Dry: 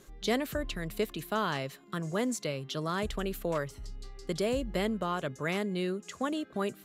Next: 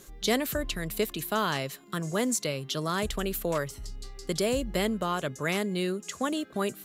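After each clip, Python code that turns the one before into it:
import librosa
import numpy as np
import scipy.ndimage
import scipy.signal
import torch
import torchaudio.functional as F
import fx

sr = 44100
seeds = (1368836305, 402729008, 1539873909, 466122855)

y = fx.high_shelf(x, sr, hz=5100.0, db=9.5)
y = y * 10.0 ** (2.5 / 20.0)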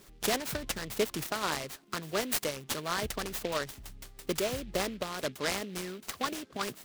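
y = fx.hpss(x, sr, part='harmonic', gain_db=-11)
y = fx.noise_mod_delay(y, sr, seeds[0], noise_hz=2600.0, depth_ms=0.081)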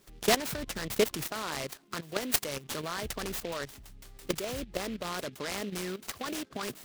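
y = fx.level_steps(x, sr, step_db=14)
y = y * 10.0 ** (6.5 / 20.0)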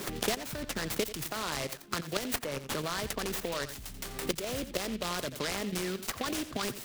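y = x + 10.0 ** (-14.0 / 20.0) * np.pad(x, (int(86 * sr / 1000.0), 0))[:len(x)]
y = fx.band_squash(y, sr, depth_pct=100)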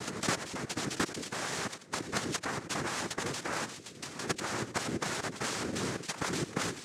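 y = fx.noise_vocoder(x, sr, seeds[1], bands=3)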